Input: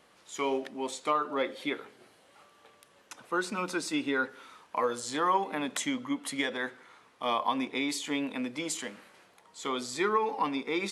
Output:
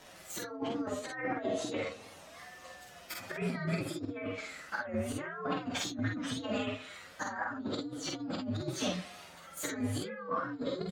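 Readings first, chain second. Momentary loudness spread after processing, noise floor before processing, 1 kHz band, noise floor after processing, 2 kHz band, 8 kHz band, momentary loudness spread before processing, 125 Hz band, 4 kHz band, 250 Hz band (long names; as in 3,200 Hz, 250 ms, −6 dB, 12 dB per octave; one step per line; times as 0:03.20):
13 LU, −62 dBFS, −9.5 dB, −53 dBFS, −5.0 dB, −4.0 dB, 9 LU, +10.0 dB, −4.5 dB, −2.5 dB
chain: partials spread apart or drawn together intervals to 127%
notch filter 400 Hz, Q 12
dynamic equaliser 110 Hz, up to +8 dB, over −53 dBFS, Q 0.73
in parallel at +0.5 dB: output level in coarse steps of 18 dB
on the sum: treble cut that deepens with the level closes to 1,700 Hz, closed at −24.5 dBFS
compressor whose output falls as the input rises −39 dBFS, ratio −1
on a send: ambience of single reflections 48 ms −3.5 dB, 59 ms −8 dB
on the sum: wow of a warped record 45 rpm, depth 100 cents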